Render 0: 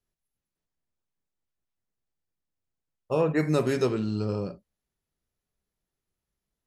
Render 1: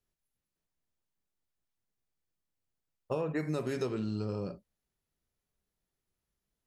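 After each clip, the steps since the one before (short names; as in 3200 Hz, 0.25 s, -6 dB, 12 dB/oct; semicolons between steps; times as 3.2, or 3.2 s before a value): compressor 6:1, threshold -29 dBFS, peak gain reduction 10 dB; gain -1 dB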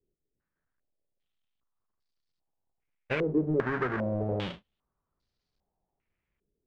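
half-waves squared off; stepped low-pass 2.5 Hz 400–4600 Hz; gain -2.5 dB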